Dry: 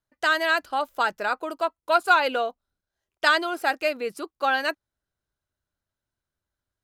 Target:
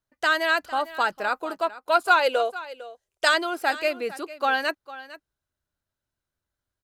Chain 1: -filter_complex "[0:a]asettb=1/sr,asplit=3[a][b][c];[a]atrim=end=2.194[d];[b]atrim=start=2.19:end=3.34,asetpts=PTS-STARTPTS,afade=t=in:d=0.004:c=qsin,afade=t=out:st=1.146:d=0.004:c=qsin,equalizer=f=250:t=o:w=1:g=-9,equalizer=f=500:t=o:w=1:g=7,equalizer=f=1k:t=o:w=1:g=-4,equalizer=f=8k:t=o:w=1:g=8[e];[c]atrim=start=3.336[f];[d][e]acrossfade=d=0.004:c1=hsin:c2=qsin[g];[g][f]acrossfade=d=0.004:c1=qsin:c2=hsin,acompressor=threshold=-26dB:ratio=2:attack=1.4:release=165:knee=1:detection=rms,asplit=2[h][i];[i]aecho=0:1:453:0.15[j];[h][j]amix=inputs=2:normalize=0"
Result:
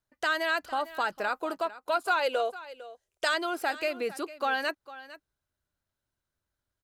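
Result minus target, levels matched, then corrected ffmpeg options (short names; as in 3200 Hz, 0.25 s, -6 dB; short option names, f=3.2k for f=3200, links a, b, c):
compressor: peak gain reduction +9 dB
-filter_complex "[0:a]asettb=1/sr,asplit=3[a][b][c];[a]atrim=end=2.194[d];[b]atrim=start=2.19:end=3.34,asetpts=PTS-STARTPTS,afade=t=in:d=0.004:c=qsin,afade=t=out:st=1.146:d=0.004:c=qsin,equalizer=f=250:t=o:w=1:g=-9,equalizer=f=500:t=o:w=1:g=7,equalizer=f=1k:t=o:w=1:g=-4,equalizer=f=8k:t=o:w=1:g=8[e];[c]atrim=start=3.336[f];[d][e]acrossfade=d=0.004:c1=hsin:c2=qsin[g];[g][f]acrossfade=d=0.004:c1=qsin:c2=hsin,asplit=2[h][i];[i]aecho=0:1:453:0.15[j];[h][j]amix=inputs=2:normalize=0"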